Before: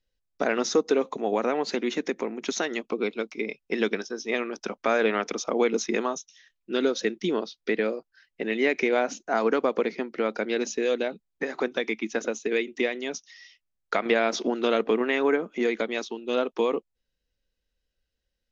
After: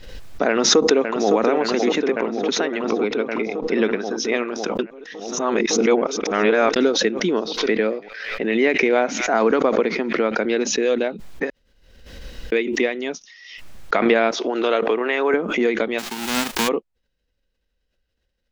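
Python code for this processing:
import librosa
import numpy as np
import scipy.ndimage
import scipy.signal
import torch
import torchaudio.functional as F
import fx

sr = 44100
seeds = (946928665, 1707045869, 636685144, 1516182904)

y = fx.echo_throw(x, sr, start_s=0.48, length_s=0.88, ms=560, feedback_pct=80, wet_db=-6.5)
y = fx.air_absorb(y, sr, metres=140.0, at=(2.01, 4.11))
y = fx.echo_wet_highpass(y, sr, ms=118, feedback_pct=66, hz=1900.0, wet_db=-21.0, at=(7.57, 10.37), fade=0.02)
y = fx.highpass(y, sr, hz=410.0, slope=12, at=(14.31, 15.34))
y = fx.envelope_flatten(y, sr, power=0.1, at=(15.98, 16.67), fade=0.02)
y = fx.edit(y, sr, fx.reverse_span(start_s=4.79, length_s=1.97),
    fx.room_tone_fill(start_s=11.5, length_s=1.02), tone=tone)
y = fx.high_shelf(y, sr, hz=5500.0, db=-11.5)
y = fx.pre_swell(y, sr, db_per_s=50.0)
y = y * librosa.db_to_amplitude(5.5)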